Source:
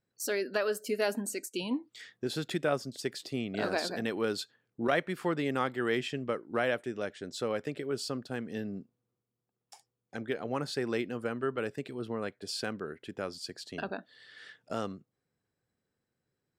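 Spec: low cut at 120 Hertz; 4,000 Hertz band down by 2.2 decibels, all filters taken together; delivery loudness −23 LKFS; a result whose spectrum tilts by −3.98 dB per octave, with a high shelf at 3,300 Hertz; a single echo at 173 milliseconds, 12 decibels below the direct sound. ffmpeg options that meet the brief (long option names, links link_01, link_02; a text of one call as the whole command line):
ffmpeg -i in.wav -af "highpass=120,highshelf=frequency=3300:gain=5.5,equalizer=frequency=4000:width_type=o:gain=-7,aecho=1:1:173:0.251,volume=11dB" out.wav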